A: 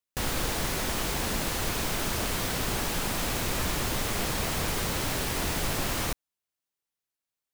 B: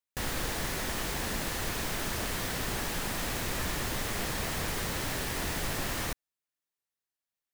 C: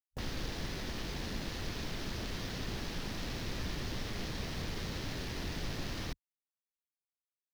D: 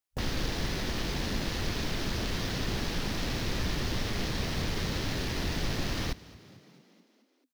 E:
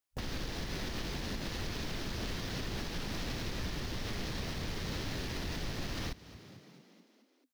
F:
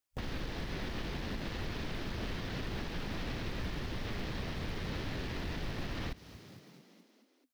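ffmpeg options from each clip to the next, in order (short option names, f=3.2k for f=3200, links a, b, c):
-af "equalizer=f=1.8k:w=4.9:g=4.5,volume=-4dB"
-filter_complex "[0:a]afwtdn=0.00708,acrossover=split=420|3000[a][b][c];[b]acompressor=threshold=-46dB:ratio=4[d];[a][d][c]amix=inputs=3:normalize=0,volume=-2.5dB"
-filter_complex "[0:a]asplit=7[a][b][c][d][e][f][g];[b]adelay=219,afreqshift=40,volume=-20.5dB[h];[c]adelay=438,afreqshift=80,volume=-24.4dB[i];[d]adelay=657,afreqshift=120,volume=-28.3dB[j];[e]adelay=876,afreqshift=160,volume=-32.1dB[k];[f]adelay=1095,afreqshift=200,volume=-36dB[l];[g]adelay=1314,afreqshift=240,volume=-39.9dB[m];[a][h][i][j][k][l][m]amix=inputs=7:normalize=0,volume=7dB"
-af "alimiter=level_in=4dB:limit=-24dB:level=0:latency=1:release=238,volume=-4dB"
-filter_complex "[0:a]acrusher=bits=4:mode=log:mix=0:aa=0.000001,acrossover=split=3900[a][b];[b]acompressor=threshold=-58dB:ratio=4:attack=1:release=60[c];[a][c]amix=inputs=2:normalize=0"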